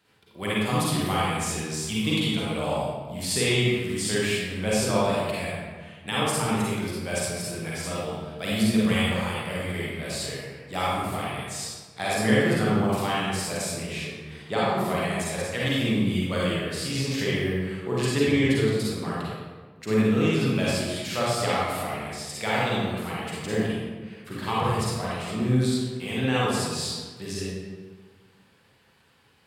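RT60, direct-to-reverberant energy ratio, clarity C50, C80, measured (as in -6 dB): 1.5 s, -7.5 dB, -4.5 dB, 0.0 dB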